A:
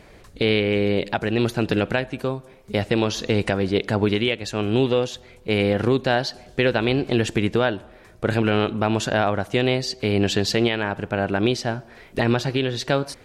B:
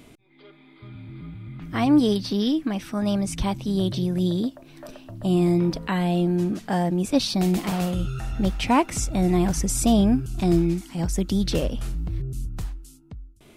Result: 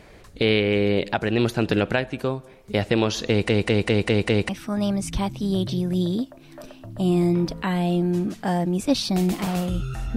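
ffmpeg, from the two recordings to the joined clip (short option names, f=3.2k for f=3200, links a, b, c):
-filter_complex "[0:a]apad=whole_dur=10.16,atrim=end=10.16,asplit=6[a][b][c][d][e][f];[a]atrim=end=3.492[g];[b]atrim=start=3.288:end=3.492[h];[c]atrim=start=3.288:end=3.492[i];[d]atrim=start=3.288:end=3.492[j];[e]atrim=start=3.288:end=3.492[k];[f]atrim=start=3.288:end=3.492[l];[1:a]atrim=start=2.738:end=8.41[m];[g][h]acrossfade=d=0.004:c1=hsin:c2=hsin[n];[n][i]acrossfade=d=0.004:c1=hsin:c2=hsin[o];[o][j]acrossfade=d=0.004:c1=hsin:c2=hsin[p];[p][k]acrossfade=d=0.004:c1=hsin:c2=hsin[q];[q][l]acrossfade=d=0.004:c1=hsin:c2=hsin[r];[r][m]acrossfade=d=0.004:c1=hsin:c2=hsin"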